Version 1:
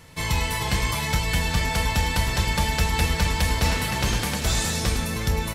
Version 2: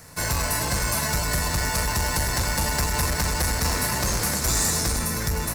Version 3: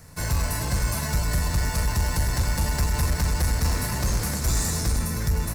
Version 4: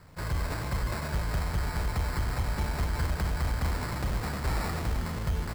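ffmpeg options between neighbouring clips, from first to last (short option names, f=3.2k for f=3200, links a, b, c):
-filter_complex "[0:a]asoftclip=type=tanh:threshold=-19.5dB,highshelf=f=3.1k:g=10,acrossover=split=640|4100[a][b][c];[b]acrusher=samples=12:mix=1:aa=0.000001[d];[a][d][c]amix=inputs=3:normalize=0"
-af "lowshelf=f=200:g=10.5,volume=-5.5dB"
-af "acrusher=samples=14:mix=1:aa=0.000001,volume=-6dB"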